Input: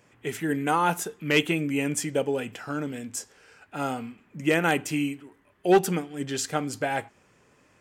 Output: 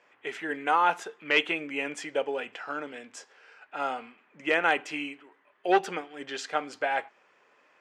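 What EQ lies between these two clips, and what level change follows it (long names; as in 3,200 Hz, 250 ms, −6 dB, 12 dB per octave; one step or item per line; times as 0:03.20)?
band-pass filter 570–3,400 Hz
+1.5 dB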